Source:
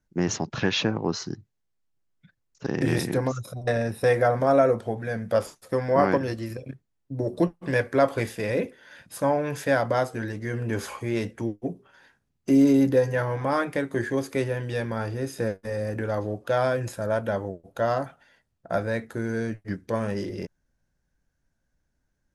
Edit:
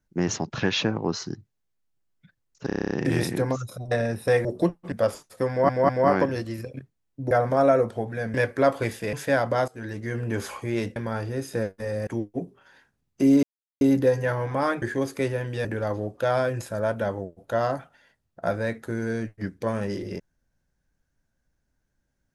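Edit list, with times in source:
0:02.67: stutter 0.03 s, 9 plays
0:04.21–0:05.24: swap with 0:07.23–0:07.70
0:05.81: stutter 0.20 s, 3 plays
0:08.49–0:09.52: remove
0:10.07–0:10.35: fade in, from −17.5 dB
0:12.71: splice in silence 0.38 s
0:13.72–0:13.98: remove
0:14.81–0:15.92: move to 0:11.35

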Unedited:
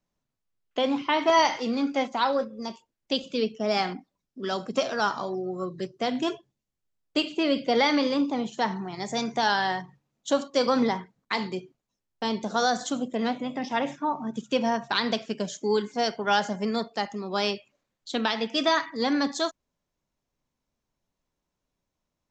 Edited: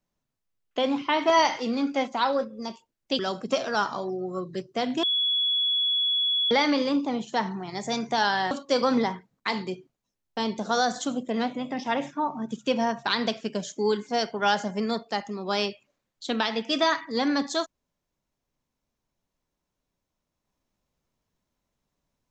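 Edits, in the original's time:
0:03.19–0:04.44: remove
0:06.28–0:07.76: beep over 3,380 Hz −21.5 dBFS
0:09.76–0:10.36: remove

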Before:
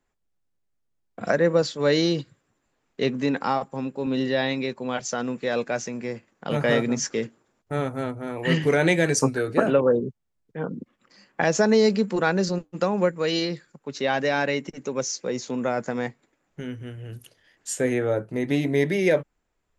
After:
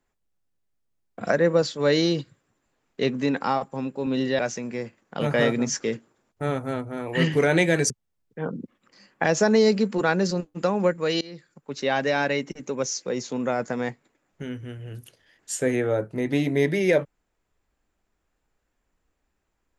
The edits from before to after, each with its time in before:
0:04.39–0:05.69: remove
0:09.20–0:10.08: remove
0:13.39–0:13.89: fade in, from −23 dB

